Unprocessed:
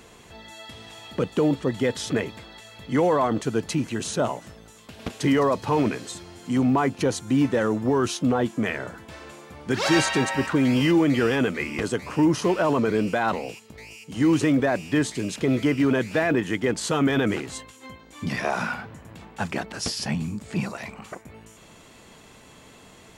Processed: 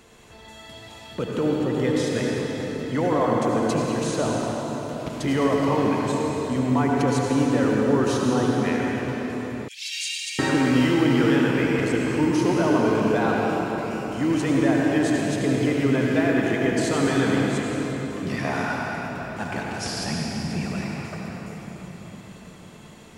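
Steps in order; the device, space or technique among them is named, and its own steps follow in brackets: cathedral (reverberation RT60 4.9 s, pre-delay 68 ms, DRR -3 dB); 9.68–10.39 s: steep high-pass 2.4 kHz 48 dB/octave; trim -3.5 dB

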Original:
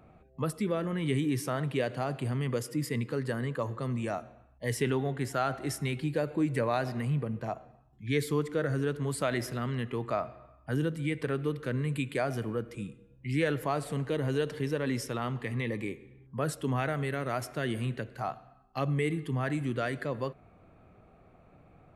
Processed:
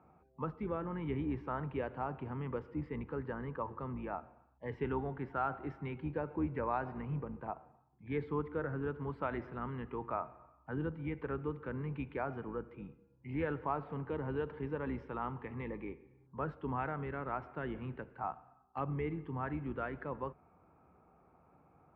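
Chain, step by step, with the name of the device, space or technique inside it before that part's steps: sub-octave bass pedal (octave divider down 2 oct, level -4 dB; cabinet simulation 67–2200 Hz, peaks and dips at 110 Hz -10 dB, 210 Hz -3 dB, 630 Hz -5 dB, 900 Hz +10 dB, 1.3 kHz +3 dB, 1.9 kHz -6 dB); trim -6.5 dB

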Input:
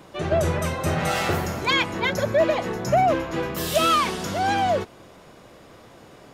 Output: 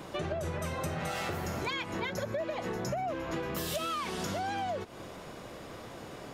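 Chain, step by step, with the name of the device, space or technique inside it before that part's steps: serial compression, peaks first (compression, threshold -29 dBFS, peak gain reduction 13.5 dB; compression 2:1, threshold -38 dBFS, peak gain reduction 7 dB); trim +2.5 dB

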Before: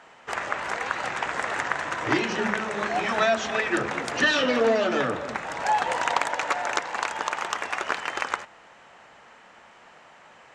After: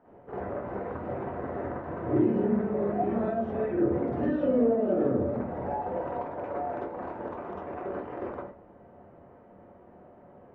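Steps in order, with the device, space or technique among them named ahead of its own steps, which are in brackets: television next door (compression 3:1, threshold -27 dBFS, peak gain reduction 8 dB; low-pass 410 Hz 12 dB/octave; reverberation RT60 0.40 s, pre-delay 42 ms, DRR -7 dB)

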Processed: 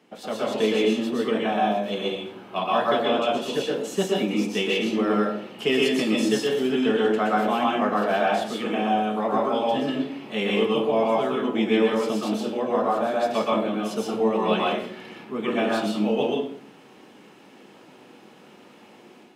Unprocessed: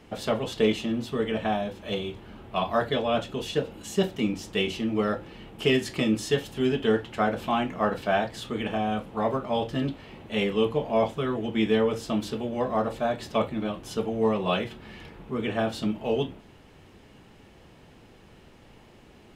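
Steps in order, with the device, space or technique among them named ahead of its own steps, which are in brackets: far laptop microphone (reverberation RT60 0.50 s, pre-delay 112 ms, DRR -3 dB; high-pass 180 Hz 24 dB/octave; level rider gain up to 6.5 dB); trim -6 dB

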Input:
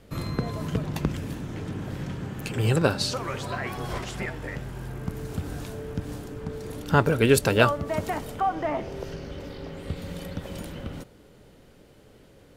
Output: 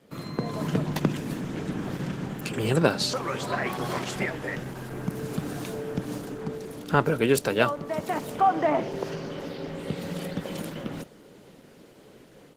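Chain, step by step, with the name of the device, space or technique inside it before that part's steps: 9.02–9.46 s: dynamic bell 1.1 kHz, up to +4 dB, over -56 dBFS, Q 2; video call (high-pass 140 Hz 24 dB/octave; level rider gain up to 8 dB; trim -3 dB; Opus 16 kbps 48 kHz)

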